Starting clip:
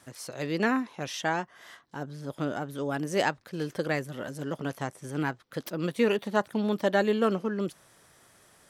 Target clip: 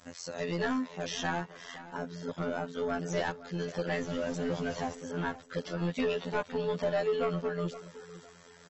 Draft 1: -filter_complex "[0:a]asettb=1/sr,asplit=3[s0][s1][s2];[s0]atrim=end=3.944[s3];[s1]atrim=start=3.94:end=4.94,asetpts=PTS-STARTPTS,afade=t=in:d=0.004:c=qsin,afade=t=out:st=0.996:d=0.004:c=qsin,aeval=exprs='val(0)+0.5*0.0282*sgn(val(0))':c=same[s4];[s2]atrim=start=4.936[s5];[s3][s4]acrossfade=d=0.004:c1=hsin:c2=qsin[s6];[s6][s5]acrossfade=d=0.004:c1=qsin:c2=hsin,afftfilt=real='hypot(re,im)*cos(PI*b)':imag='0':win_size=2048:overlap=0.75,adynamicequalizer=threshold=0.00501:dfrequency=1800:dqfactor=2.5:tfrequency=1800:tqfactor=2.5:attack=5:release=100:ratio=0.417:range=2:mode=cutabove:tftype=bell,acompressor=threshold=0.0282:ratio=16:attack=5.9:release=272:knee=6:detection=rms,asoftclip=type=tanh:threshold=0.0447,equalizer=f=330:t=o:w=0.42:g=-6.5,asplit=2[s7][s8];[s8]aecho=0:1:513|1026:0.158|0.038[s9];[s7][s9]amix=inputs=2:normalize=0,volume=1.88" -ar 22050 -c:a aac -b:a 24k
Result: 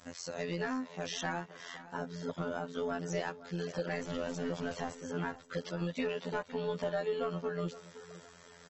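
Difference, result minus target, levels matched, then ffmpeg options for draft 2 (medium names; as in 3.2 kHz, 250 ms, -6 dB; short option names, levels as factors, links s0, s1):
compression: peak gain reduction +7.5 dB
-filter_complex "[0:a]asettb=1/sr,asplit=3[s0][s1][s2];[s0]atrim=end=3.944[s3];[s1]atrim=start=3.94:end=4.94,asetpts=PTS-STARTPTS,afade=t=in:d=0.004:c=qsin,afade=t=out:st=0.996:d=0.004:c=qsin,aeval=exprs='val(0)+0.5*0.0282*sgn(val(0))':c=same[s4];[s2]atrim=start=4.936[s5];[s3][s4]acrossfade=d=0.004:c1=hsin:c2=qsin[s6];[s6][s5]acrossfade=d=0.004:c1=qsin:c2=hsin,afftfilt=real='hypot(re,im)*cos(PI*b)':imag='0':win_size=2048:overlap=0.75,adynamicequalizer=threshold=0.00501:dfrequency=1800:dqfactor=2.5:tfrequency=1800:tqfactor=2.5:attack=5:release=100:ratio=0.417:range=2:mode=cutabove:tftype=bell,acompressor=threshold=0.0708:ratio=16:attack=5.9:release=272:knee=6:detection=rms,asoftclip=type=tanh:threshold=0.0447,equalizer=f=330:t=o:w=0.42:g=-6.5,asplit=2[s7][s8];[s8]aecho=0:1:513|1026:0.158|0.038[s9];[s7][s9]amix=inputs=2:normalize=0,volume=1.88" -ar 22050 -c:a aac -b:a 24k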